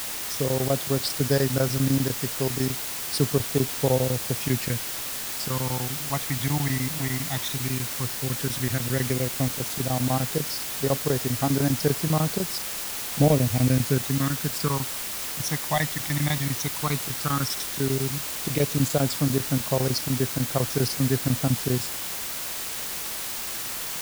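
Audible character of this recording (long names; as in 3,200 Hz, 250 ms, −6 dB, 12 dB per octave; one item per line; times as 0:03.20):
phaser sweep stages 12, 0.11 Hz, lowest notch 450–3,000 Hz
chopped level 10 Hz, duty 80%
a quantiser's noise floor 6 bits, dither triangular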